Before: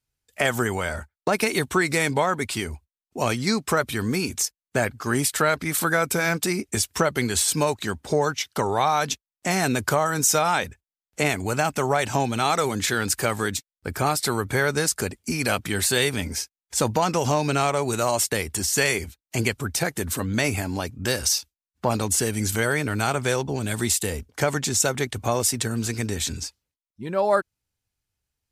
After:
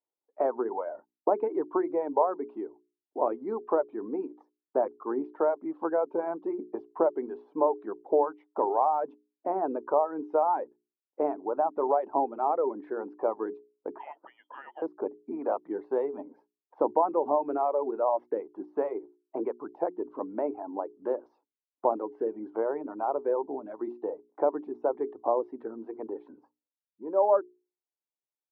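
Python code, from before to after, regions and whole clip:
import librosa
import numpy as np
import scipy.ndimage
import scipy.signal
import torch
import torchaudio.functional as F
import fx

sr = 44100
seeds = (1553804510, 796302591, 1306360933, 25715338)

y = fx.chain(x, sr, fx.freq_invert(carrier_hz=3300),
    fx.peak_eq(hz=1900.0, db=2.5, octaves=0.33),
    fx.notch(hz=1100.0, q=6.4), at=(13.98, 14.82))
y = fx.dereverb_blind(y, sr, rt60_s=1.2)
y = scipy.signal.sosfilt(scipy.signal.ellip(3, 1.0, 80, [300.0, 980.0], 'bandpass', fs=sr, output='sos'), y)
y = fx.hum_notches(y, sr, base_hz=60, count=7)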